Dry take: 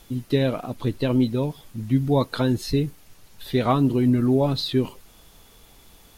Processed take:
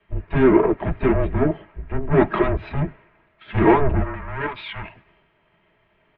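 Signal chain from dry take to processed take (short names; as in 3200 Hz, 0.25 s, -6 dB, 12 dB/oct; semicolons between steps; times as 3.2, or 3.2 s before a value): tube stage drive 28 dB, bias 0.5; low shelf 370 Hz -10 dB; harmoniser -7 st -16 dB, +4 st -12 dB; on a send at -2 dB: reverb, pre-delay 3 ms; on the sum: spectral gain 4.04–4.95, 210–1100 Hz -11 dB; dynamic EQ 630 Hz, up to +6 dB, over -50 dBFS, Q 3.2; in parallel at +3 dB: limiter -25 dBFS, peak gain reduction 8 dB; on the sum: mistuned SSB -280 Hz 320–2600 Hz; three-band expander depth 70%; gain +7.5 dB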